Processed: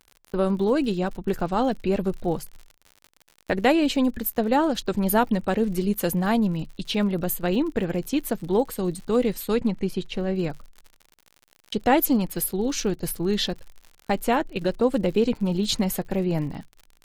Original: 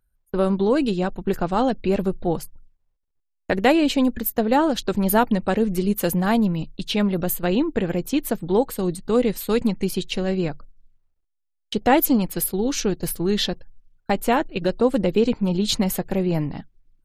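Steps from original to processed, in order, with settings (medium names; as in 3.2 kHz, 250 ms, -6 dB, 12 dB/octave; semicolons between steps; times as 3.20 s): crackle 73 per s -33 dBFS; 9.54–10.35 s: treble shelf 6 kHz -> 3.2 kHz -12 dB; trim -2.5 dB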